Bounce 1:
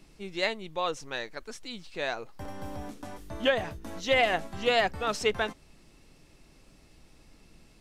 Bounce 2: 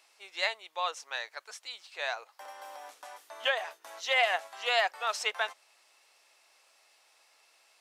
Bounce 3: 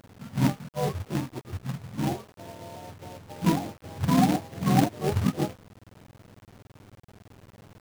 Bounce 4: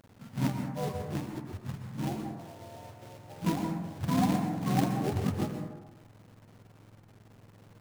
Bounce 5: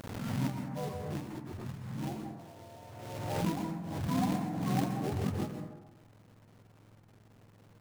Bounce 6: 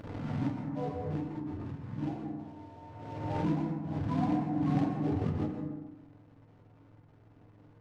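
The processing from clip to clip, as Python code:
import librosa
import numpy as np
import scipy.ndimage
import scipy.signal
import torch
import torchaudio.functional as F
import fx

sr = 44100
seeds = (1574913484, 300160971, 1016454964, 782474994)

y1 = scipy.signal.sosfilt(scipy.signal.butter(4, 670.0, 'highpass', fs=sr, output='sos'), x)
y2 = fx.octave_mirror(y1, sr, pivot_hz=730.0)
y2 = fx.quant_companded(y2, sr, bits=4)
y2 = F.gain(torch.from_numpy(y2), 3.5).numpy()
y3 = fx.rev_plate(y2, sr, seeds[0], rt60_s=1.0, hf_ratio=0.35, predelay_ms=110, drr_db=4.5)
y3 = F.gain(torch.from_numpy(y3), -6.5).numpy()
y4 = fx.pre_swell(y3, sr, db_per_s=36.0)
y4 = F.gain(torch.from_numpy(y4), -4.5).numpy()
y5 = fx.spacing_loss(y4, sr, db_at_10k=25)
y5 = fx.rev_fdn(y5, sr, rt60_s=0.59, lf_ratio=1.55, hf_ratio=0.6, size_ms=20.0, drr_db=4.0)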